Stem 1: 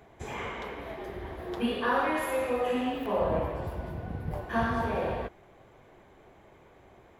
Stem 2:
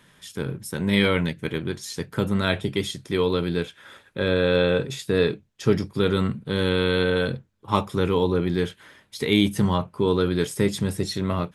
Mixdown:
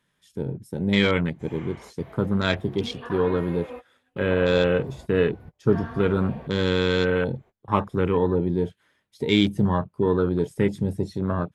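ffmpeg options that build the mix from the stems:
-filter_complex "[0:a]acrossover=split=4400[a][b];[b]acompressor=threshold=-59dB:ratio=4:attack=1:release=60[c];[a][c]amix=inputs=2:normalize=0,adelay=1200,volume=-8.5dB[d];[1:a]afwtdn=0.0251,volume=0dB,asplit=2[e][f];[f]apad=whole_len=370387[g];[d][g]sidechaingate=range=-37dB:threshold=-45dB:ratio=16:detection=peak[h];[h][e]amix=inputs=2:normalize=0"

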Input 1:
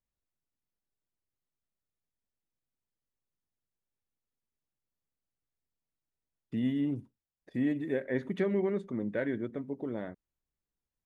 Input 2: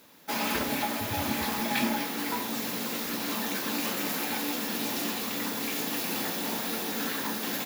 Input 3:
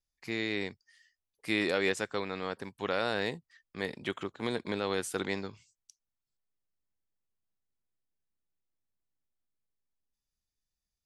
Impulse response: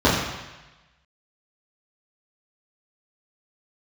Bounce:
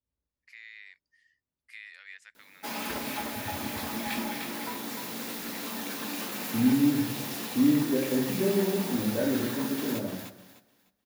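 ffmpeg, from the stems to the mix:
-filter_complex "[0:a]volume=-12.5dB,asplit=2[a][b];[b]volume=-11dB[c];[1:a]equalizer=f=9k:t=o:w=0.23:g=4,adelay=2350,volume=-5.5dB,asplit=2[d][e];[e]volume=-6dB[f];[2:a]acompressor=threshold=-38dB:ratio=2.5,highpass=f=1.9k:t=q:w=3.5,adelay=250,volume=-13dB[g];[3:a]atrim=start_sample=2205[h];[c][h]afir=irnorm=-1:irlink=0[i];[f]aecho=0:1:302|604|906|1208:1|0.25|0.0625|0.0156[j];[a][d][g][i][j]amix=inputs=5:normalize=0"

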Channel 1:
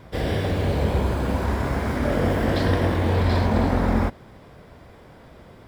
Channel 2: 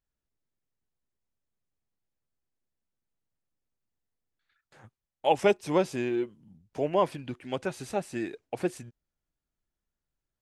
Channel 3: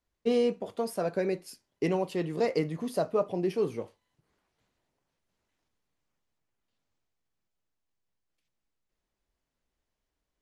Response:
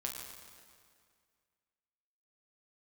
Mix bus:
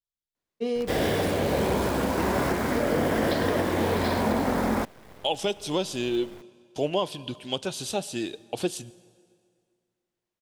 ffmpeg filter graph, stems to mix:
-filter_complex "[0:a]acrossover=split=170|3000[a][b][c];[a]acompressor=threshold=-47dB:ratio=2[d];[d][b][c]amix=inputs=3:normalize=0,acrusher=bits=7:dc=4:mix=0:aa=0.000001,adelay=750,volume=2dB[e];[1:a]highshelf=f=2.6k:t=q:w=3:g=8,agate=range=-18dB:threshold=-48dB:ratio=16:detection=peak,volume=1.5dB,asplit=2[f][g];[g]volume=-15.5dB[h];[2:a]highpass=130,adelay=350,volume=-2.5dB[i];[3:a]atrim=start_sample=2205[j];[h][j]afir=irnorm=-1:irlink=0[k];[e][f][i][k]amix=inputs=4:normalize=0,alimiter=limit=-14.5dB:level=0:latency=1:release=367"

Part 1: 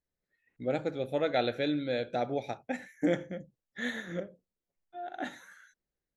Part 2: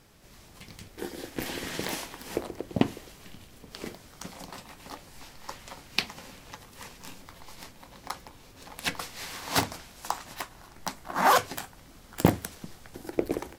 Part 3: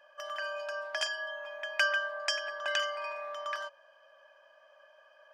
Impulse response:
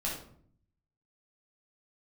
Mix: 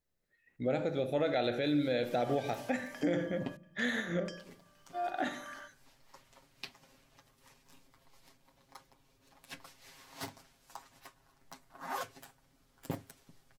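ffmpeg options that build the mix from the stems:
-filter_complex "[0:a]volume=2.5dB,asplit=3[a][b][c];[b]volume=-14dB[d];[1:a]aecho=1:1:7.4:0.78,adelay=650,volume=-19.5dB,asplit=3[e][f][g];[e]atrim=end=3.57,asetpts=PTS-STARTPTS,afade=t=out:st=3.566:d=0.004:c=hsin[h];[f]atrim=start=3.57:end=4.25,asetpts=PTS-STARTPTS,volume=0[i];[g]atrim=start=4.25,asetpts=PTS-STARTPTS,afade=t=in:d=0.004:c=hsin[j];[h][i][j]concat=n=3:v=0:a=1[k];[2:a]acompressor=threshold=-44dB:ratio=5,adelay=2000,volume=-4.5dB,asplit=2[l][m];[m]volume=-23.5dB[n];[c]apad=whole_len=323297[o];[l][o]sidechaingate=range=-33dB:threshold=-54dB:ratio=16:detection=peak[p];[3:a]atrim=start_sample=2205[q];[d][n]amix=inputs=2:normalize=0[r];[r][q]afir=irnorm=-1:irlink=0[s];[a][k][p][s]amix=inputs=4:normalize=0,alimiter=limit=-22dB:level=0:latency=1:release=82"

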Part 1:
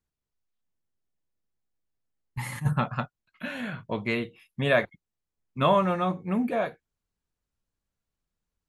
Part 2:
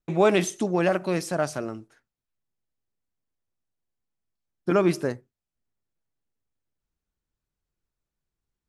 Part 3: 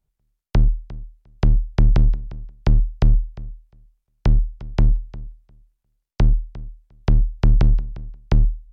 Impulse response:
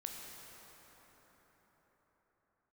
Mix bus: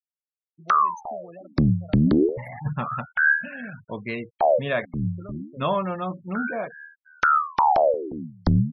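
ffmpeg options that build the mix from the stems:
-filter_complex "[0:a]volume=-2.5dB,asplit=2[a][b];[1:a]aecho=1:1:1.6:0.32,acompressor=threshold=-20dB:ratio=6,adelay=500,volume=-18.5dB[c];[2:a]equalizer=f=4.5k:w=6.6:g=6.5,aeval=exprs='val(0)*sin(2*PI*890*n/s+890*0.85/0.3*sin(2*PI*0.3*n/s))':c=same,adelay=150,volume=1dB[d];[b]apad=whole_len=391406[e];[d][e]sidechaincompress=threshold=-42dB:ratio=12:attack=16:release=308[f];[a][c][f]amix=inputs=3:normalize=0,afftfilt=real='re*gte(hypot(re,im),0.0178)':imag='im*gte(hypot(re,im),0.0178)':win_size=1024:overlap=0.75,alimiter=limit=-10dB:level=0:latency=1:release=320"

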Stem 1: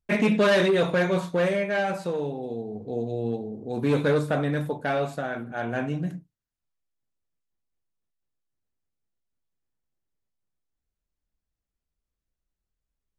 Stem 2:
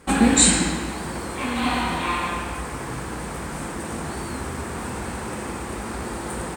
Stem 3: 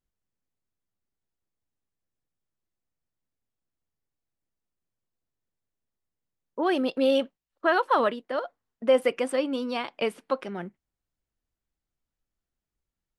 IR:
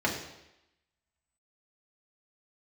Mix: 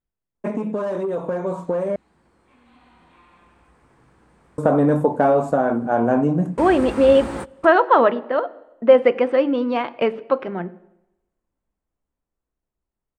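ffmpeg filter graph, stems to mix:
-filter_complex "[0:a]equalizer=f=250:t=o:w=1:g=9,equalizer=f=500:t=o:w=1:g=7,equalizer=f=1k:t=o:w=1:g=12,equalizer=f=2k:t=o:w=1:g=-7,equalizer=f=4k:t=o:w=1:g=-10,equalizer=f=8k:t=o:w=1:g=11,acompressor=threshold=-16dB:ratio=12,adelay=350,volume=-5.5dB,asplit=3[a][b][c];[a]atrim=end=1.96,asetpts=PTS-STARTPTS,afade=t=out:st=1.956:d=0.004:c=hsin[d];[b]atrim=start=1.96:end=4.58,asetpts=PTS-STARTPTS,volume=0[e];[c]atrim=start=4.58,asetpts=PTS-STARTPTS,afade=t=in:d=0.004:c=hsin[f];[d][e][f]concat=n=3:v=0:a=1[g];[1:a]acompressor=threshold=-23dB:ratio=2.5,adelay=1100,volume=-8dB[h];[2:a]aemphasis=mode=reproduction:type=75fm,adynamicsmooth=sensitivity=4.5:basefreq=6.9k,volume=-1.5dB,asplit=3[i][j][k];[j]volume=-21.5dB[l];[k]apad=whole_len=337934[m];[h][m]sidechaingate=range=-27dB:threshold=-53dB:ratio=16:detection=peak[n];[3:a]atrim=start_sample=2205[o];[l][o]afir=irnorm=-1:irlink=0[p];[g][n][i][p]amix=inputs=4:normalize=0,aemphasis=mode=reproduction:type=50kf,dynaudnorm=f=320:g=17:m=12dB"

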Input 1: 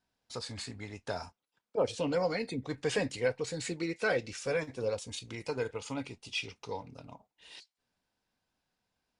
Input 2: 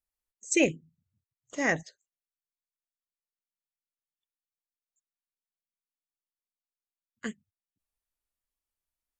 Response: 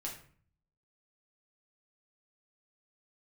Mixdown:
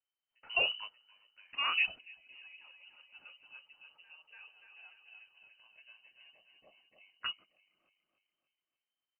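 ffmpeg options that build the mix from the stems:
-filter_complex "[0:a]adynamicequalizer=threshold=0.00355:dfrequency=1800:dqfactor=0.74:tfrequency=1800:tqfactor=0.74:attack=5:release=100:ratio=0.375:range=2:mode=cutabove:tftype=bell,volume=-1.5dB,asplit=2[a][b];[b]volume=-23dB[c];[1:a]acrossover=split=280|3000[d][e][f];[e]acompressor=threshold=-31dB:ratio=6[g];[d][g][f]amix=inputs=3:normalize=0,aexciter=amount=5.4:drive=6.8:freq=5k,volume=-2dB,asplit=2[h][i];[i]apad=whole_len=405560[j];[a][j]sidechaingate=range=-33dB:threshold=-49dB:ratio=16:detection=peak[k];[c]aecho=0:1:291|582|873|1164|1455|1746|2037:1|0.5|0.25|0.125|0.0625|0.0312|0.0156[l];[k][h][l]amix=inputs=3:normalize=0,lowpass=f=2.6k:t=q:w=0.5098,lowpass=f=2.6k:t=q:w=0.6013,lowpass=f=2.6k:t=q:w=0.9,lowpass=f=2.6k:t=q:w=2.563,afreqshift=-3100"

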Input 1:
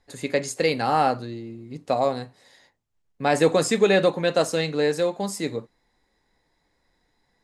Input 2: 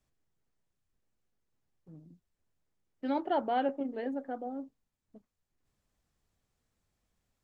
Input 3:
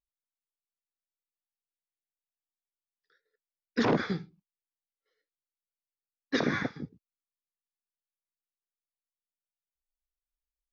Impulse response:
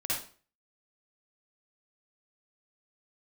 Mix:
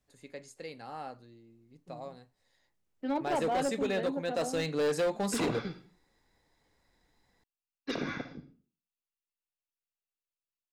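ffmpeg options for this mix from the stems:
-filter_complex "[0:a]volume=-3dB,afade=t=in:st=2.39:d=0.66:silence=0.375837,afade=t=in:st=4.24:d=0.78:silence=0.316228[a];[1:a]volume=0dB[b];[2:a]equalizer=f=2.7k:t=o:w=0.2:g=9.5,bandreject=f=1.8k:w=5.7,asubboost=boost=3.5:cutoff=53,adelay=1550,volume=-7dB,asplit=2[c][d];[d]volume=-13.5dB[e];[3:a]atrim=start_sample=2205[f];[e][f]afir=irnorm=-1:irlink=0[g];[a][b][c][g]amix=inputs=4:normalize=0,asoftclip=type=hard:threshold=-25dB"

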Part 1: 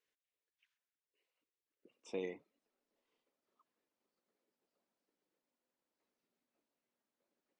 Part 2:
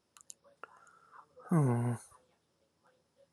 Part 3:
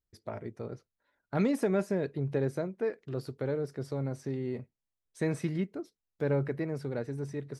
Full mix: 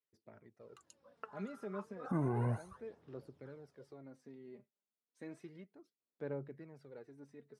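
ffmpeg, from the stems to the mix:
-filter_complex "[0:a]volume=-17.5dB[a];[1:a]lowpass=f=2.9k:p=1,dynaudnorm=f=150:g=9:m=5dB,adelay=600,volume=-1dB[b];[2:a]highpass=170,volume=-18dB[c];[a][b][c]amix=inputs=3:normalize=0,highshelf=f=5.1k:g=-7,aphaser=in_gain=1:out_gain=1:delay=5:decay=0.54:speed=0.32:type=sinusoidal,alimiter=level_in=2dB:limit=-24dB:level=0:latency=1:release=165,volume=-2dB"

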